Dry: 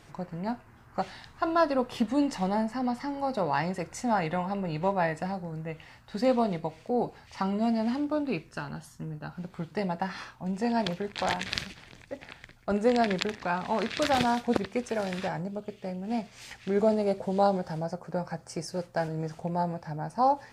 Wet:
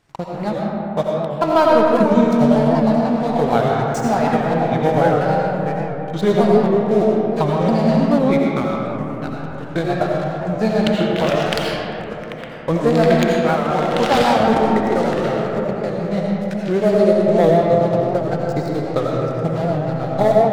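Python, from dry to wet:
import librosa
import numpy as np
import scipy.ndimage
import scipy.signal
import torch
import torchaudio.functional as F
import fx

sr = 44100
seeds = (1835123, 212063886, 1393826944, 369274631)

y = fx.pitch_ramps(x, sr, semitones=-4.5, every_ms=1281)
y = fx.transient(y, sr, attack_db=4, sustain_db=-4)
y = fx.leveller(y, sr, passes=3)
y = fx.rev_freeverb(y, sr, rt60_s=3.6, hf_ratio=0.35, predelay_ms=45, drr_db=-3.0)
y = fx.record_warp(y, sr, rpm=78.0, depth_cents=100.0)
y = y * 10.0 ** (-3.5 / 20.0)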